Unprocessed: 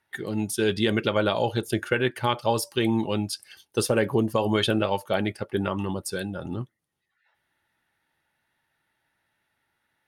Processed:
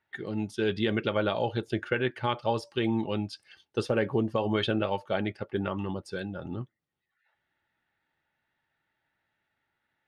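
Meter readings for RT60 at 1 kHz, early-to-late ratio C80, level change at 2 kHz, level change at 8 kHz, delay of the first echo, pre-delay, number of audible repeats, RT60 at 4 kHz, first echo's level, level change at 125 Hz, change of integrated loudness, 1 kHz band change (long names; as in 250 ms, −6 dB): no reverb audible, no reverb audible, −4.5 dB, below −15 dB, no echo audible, no reverb audible, no echo audible, no reverb audible, no echo audible, −4.0 dB, −4.5 dB, −4.5 dB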